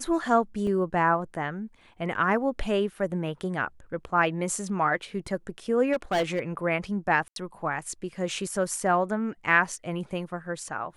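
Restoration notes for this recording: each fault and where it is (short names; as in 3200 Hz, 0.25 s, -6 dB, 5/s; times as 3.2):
0.67 gap 2.2 ms
5.92–6.4 clipped -21 dBFS
7.28–7.36 gap 82 ms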